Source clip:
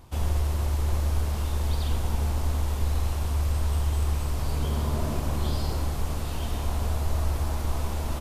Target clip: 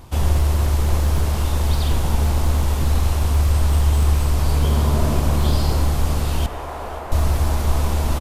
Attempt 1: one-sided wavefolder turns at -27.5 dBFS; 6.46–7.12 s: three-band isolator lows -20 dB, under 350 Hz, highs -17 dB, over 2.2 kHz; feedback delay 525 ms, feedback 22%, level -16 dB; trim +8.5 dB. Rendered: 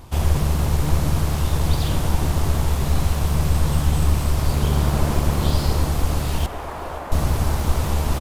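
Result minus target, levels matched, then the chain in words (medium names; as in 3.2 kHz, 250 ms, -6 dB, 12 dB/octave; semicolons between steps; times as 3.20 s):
one-sided wavefolder: distortion +15 dB
one-sided wavefolder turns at -20 dBFS; 6.46–7.12 s: three-band isolator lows -20 dB, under 350 Hz, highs -17 dB, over 2.2 kHz; feedback delay 525 ms, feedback 22%, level -16 dB; trim +8.5 dB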